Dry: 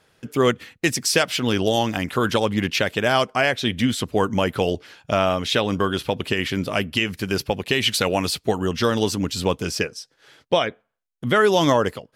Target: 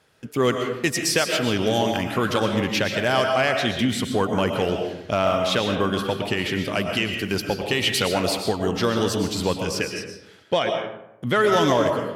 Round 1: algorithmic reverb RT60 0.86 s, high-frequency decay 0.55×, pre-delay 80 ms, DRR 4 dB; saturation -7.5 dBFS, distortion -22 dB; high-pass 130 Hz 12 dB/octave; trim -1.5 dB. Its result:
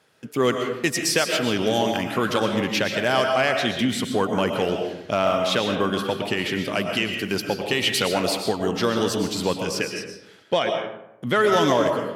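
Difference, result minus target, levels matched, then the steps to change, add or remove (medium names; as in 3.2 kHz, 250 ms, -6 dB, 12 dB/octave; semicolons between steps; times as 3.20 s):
125 Hz band -3.0 dB
change: high-pass 45 Hz 12 dB/octave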